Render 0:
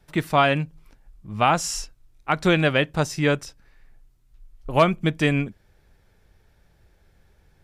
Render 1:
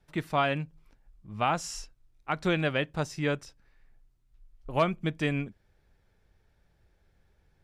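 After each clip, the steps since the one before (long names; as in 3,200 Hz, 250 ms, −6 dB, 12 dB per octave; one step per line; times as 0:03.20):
high-shelf EQ 8,800 Hz −7 dB
level −8 dB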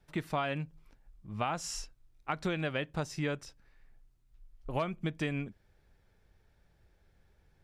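downward compressor 4 to 1, threshold −30 dBFS, peak gain reduction 9.5 dB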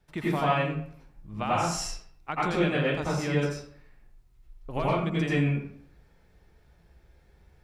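convolution reverb RT60 0.60 s, pre-delay 79 ms, DRR −7 dB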